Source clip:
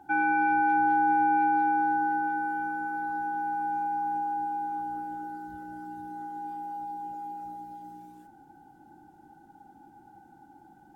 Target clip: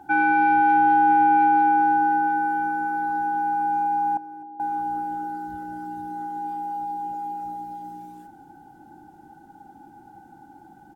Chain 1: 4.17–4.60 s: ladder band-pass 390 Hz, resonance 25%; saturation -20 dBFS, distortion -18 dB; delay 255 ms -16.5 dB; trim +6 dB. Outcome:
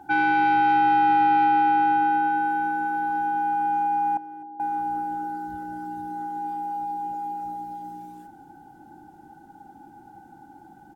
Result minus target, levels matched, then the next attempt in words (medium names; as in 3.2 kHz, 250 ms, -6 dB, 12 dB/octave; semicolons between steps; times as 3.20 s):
saturation: distortion +16 dB
4.17–4.60 s: ladder band-pass 390 Hz, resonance 25%; saturation -11 dBFS, distortion -34 dB; delay 255 ms -16.5 dB; trim +6 dB